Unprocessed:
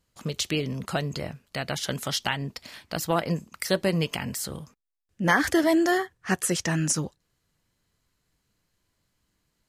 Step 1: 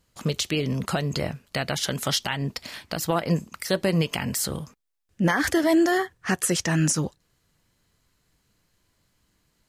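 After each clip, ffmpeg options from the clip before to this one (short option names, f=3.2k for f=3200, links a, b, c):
-af "alimiter=limit=-18dB:level=0:latency=1:release=171,volume=5.5dB"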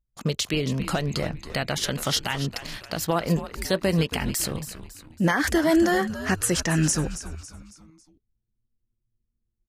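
-filter_complex "[0:a]anlmdn=0.158,asplit=5[a][b][c][d][e];[b]adelay=276,afreqshift=-120,volume=-12dB[f];[c]adelay=552,afreqshift=-240,volume=-19.3dB[g];[d]adelay=828,afreqshift=-360,volume=-26.7dB[h];[e]adelay=1104,afreqshift=-480,volume=-34dB[i];[a][f][g][h][i]amix=inputs=5:normalize=0"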